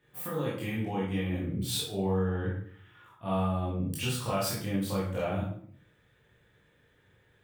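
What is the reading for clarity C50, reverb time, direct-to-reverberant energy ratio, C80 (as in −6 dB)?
2.0 dB, 0.55 s, −7.5 dB, 7.0 dB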